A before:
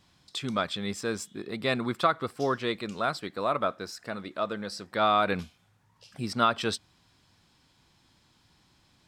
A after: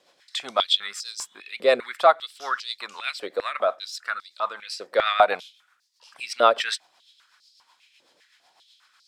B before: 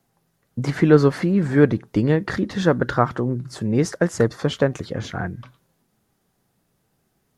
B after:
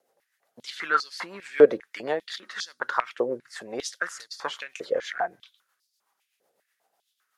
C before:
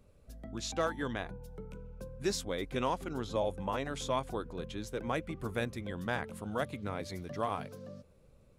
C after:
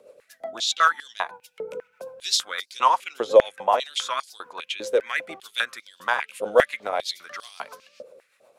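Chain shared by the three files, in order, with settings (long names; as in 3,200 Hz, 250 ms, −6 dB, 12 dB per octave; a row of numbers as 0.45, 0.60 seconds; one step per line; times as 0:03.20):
rotating-speaker cabinet horn 8 Hz
high-pass on a step sequencer 5 Hz 520–4,700 Hz
normalise the peak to −3 dBFS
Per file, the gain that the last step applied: +5.0, −2.0, +12.0 decibels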